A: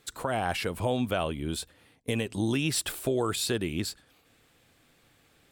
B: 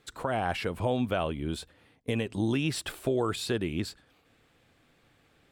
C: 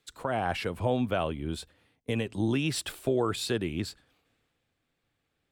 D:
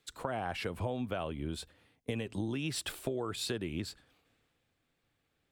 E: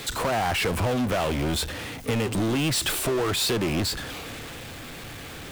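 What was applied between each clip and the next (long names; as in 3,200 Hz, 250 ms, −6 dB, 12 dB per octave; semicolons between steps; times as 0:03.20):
high-shelf EQ 5,400 Hz −11.5 dB
multiband upward and downward expander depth 40%
downward compressor, threshold −32 dBFS, peak gain reduction 10 dB
power curve on the samples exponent 0.35; level +2 dB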